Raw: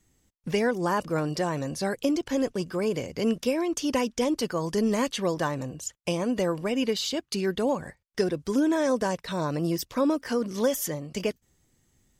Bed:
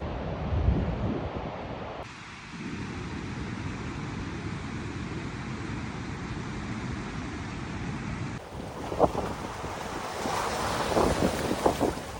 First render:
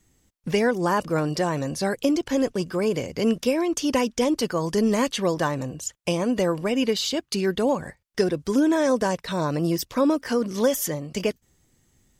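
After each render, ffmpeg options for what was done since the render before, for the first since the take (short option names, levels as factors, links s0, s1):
-af "volume=1.5"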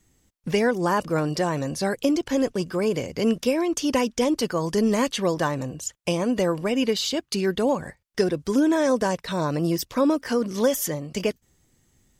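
-af anull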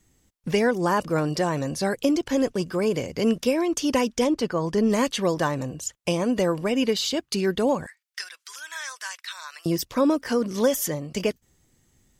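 -filter_complex "[0:a]asettb=1/sr,asplit=3[s0][s1][s2];[s0]atrim=end=4.274[s3];[s1]atrim=start=4.27:end=4.9,asetpts=PTS-STARTPTS,afade=t=in:d=0.004:c=qsin,afade=t=out:st=0.626:d=0.004:c=qsin,lowpass=f=2900:p=1[s4];[s2]atrim=start=4.896[s5];[s3][s4]acrossfade=d=0.004:c1=hsin:c2=qsin[s6];[s6][s5]acrossfade=d=0.004:c1=qsin:c2=hsin,asettb=1/sr,asplit=3[s7][s8][s9];[s7]atrim=end=7.864[s10];[s8]atrim=start=7.86:end=9.66,asetpts=PTS-STARTPTS,afade=t=in:d=0.004:c=qsin,afade=t=out:st=1.796:d=0.004:c=qsin,highpass=f=1400:w=0.5412,highpass=f=1400:w=1.3066[s11];[s9]atrim=start=9.656[s12];[s10][s11]acrossfade=d=0.004:c1=hsin:c2=qsin[s13];[s13][s12]acrossfade=d=0.004:c1=qsin:c2=hsin"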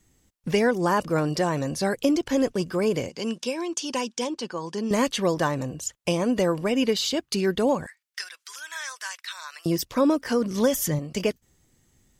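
-filter_complex "[0:a]asettb=1/sr,asplit=3[s0][s1][s2];[s0]atrim=end=3.094[s3];[s1]atrim=start=3.09:end=4.91,asetpts=PTS-STARTPTS,afade=t=in:d=0.004:c=qsin,afade=t=out:st=1.816:d=0.004:c=qsin,highpass=280,equalizer=f=290:t=q:w=4:g=-7,equalizer=f=440:t=q:w=4:g=-7,equalizer=f=640:t=q:w=4:g=-10,equalizer=f=1300:t=q:w=4:g=-7,equalizer=f=2000:t=q:w=4:g=-8,lowpass=f=9800:w=0.5412,lowpass=f=9800:w=1.3066[s4];[s2]atrim=start=4.906[s5];[s3][s4]acrossfade=d=0.004:c1=hsin:c2=qsin[s6];[s6][s5]acrossfade=d=0.004:c1=qsin:c2=hsin,asettb=1/sr,asplit=3[s7][s8][s9];[s7]atrim=end=10.314[s10];[s8]atrim=start=10.31:end=10.99,asetpts=PTS-STARTPTS,afade=t=in:d=0.004:c=qsin,afade=t=out:st=0.676:d=0.004:c=qsin,asubboost=boost=11:cutoff=240[s11];[s9]atrim=start=10.986[s12];[s10][s11]acrossfade=d=0.004:c1=hsin:c2=qsin[s13];[s13][s12]acrossfade=d=0.004:c1=qsin:c2=hsin"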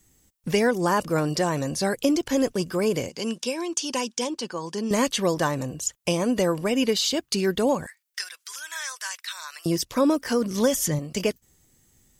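-filter_complex "[0:a]acrossover=split=10000[s0][s1];[s1]acompressor=threshold=0.00251:ratio=4:attack=1:release=60[s2];[s0][s2]amix=inputs=2:normalize=0,highshelf=f=7600:g=10.5"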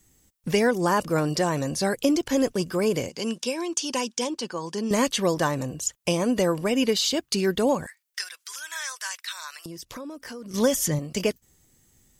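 -filter_complex "[0:a]asettb=1/sr,asplit=3[s0][s1][s2];[s0]atrim=end=9.554[s3];[s1]atrim=start=9.55:end=10.54,asetpts=PTS-STARTPTS,afade=t=in:d=0.004:c=qsin,afade=t=out:st=0.986:d=0.004:c=qsin,acompressor=threshold=0.0158:ratio=6:attack=3.2:release=140:knee=1:detection=peak[s4];[s2]atrim=start=10.536[s5];[s3][s4]acrossfade=d=0.004:c1=hsin:c2=qsin[s6];[s6][s5]acrossfade=d=0.004:c1=qsin:c2=hsin"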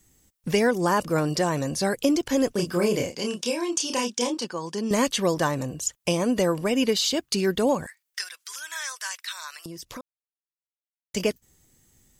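-filter_complex "[0:a]asettb=1/sr,asplit=3[s0][s1][s2];[s0]atrim=end=2.534[s3];[s1]atrim=start=2.53:end=4.45,asetpts=PTS-STARTPTS,afade=t=in:d=0.004:c=qsin,afade=t=out:st=1.916:d=0.004:c=qsin,asplit=2[s4][s5];[s5]adelay=29,volume=0.631[s6];[s4][s6]amix=inputs=2:normalize=0,atrim=end_sample=84672[s7];[s2]atrim=start=4.446[s8];[s3][s7]acrossfade=d=0.004:c1=hsin:c2=qsin[s9];[s9][s8]acrossfade=d=0.004:c1=qsin:c2=hsin,asplit=3[s10][s11][s12];[s10]atrim=end=10.01,asetpts=PTS-STARTPTS,afade=t=out:st=10.006:d=0.004:c=hsin[s13];[s11]atrim=start=10.01:end=11.14,asetpts=PTS-STARTPTS,volume=0[s14];[s12]atrim=start=11.14,asetpts=PTS-STARTPTS,afade=t=in:d=0.004:c=hsin[s15];[s13][s14][s15]concat=n=3:v=0:a=1"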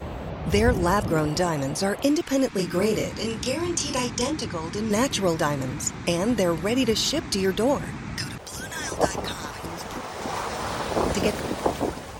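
-filter_complex "[1:a]volume=1[s0];[0:a][s0]amix=inputs=2:normalize=0"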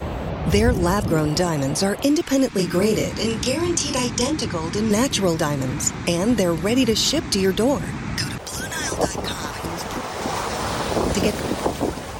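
-filter_complex "[0:a]asplit=2[s0][s1];[s1]alimiter=limit=0.178:level=0:latency=1:release=450,volume=1.06[s2];[s0][s2]amix=inputs=2:normalize=0,acrossover=split=410|3000[s3][s4][s5];[s4]acompressor=threshold=0.0355:ratio=1.5[s6];[s3][s6][s5]amix=inputs=3:normalize=0"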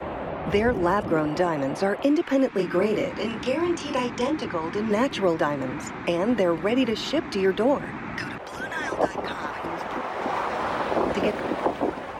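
-filter_complex "[0:a]acrossover=split=250 2800:gain=0.2 1 0.0891[s0][s1][s2];[s0][s1][s2]amix=inputs=3:normalize=0,bandreject=f=450:w=12"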